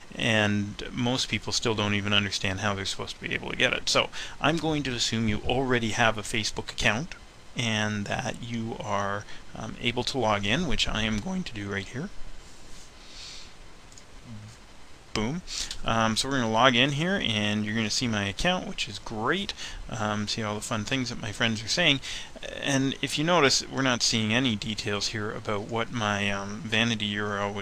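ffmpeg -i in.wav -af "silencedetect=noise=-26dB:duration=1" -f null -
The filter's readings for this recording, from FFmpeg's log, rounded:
silence_start: 12.22
silence_end: 15.16 | silence_duration: 2.94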